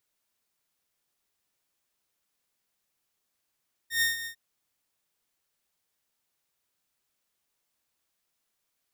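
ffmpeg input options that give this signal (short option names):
-f lavfi -i "aevalsrc='0.112*(2*mod(1840*t,1)-1)':d=0.451:s=44100,afade=t=in:d=0.116,afade=t=out:st=0.116:d=0.146:silence=0.237,afade=t=out:st=0.36:d=0.091"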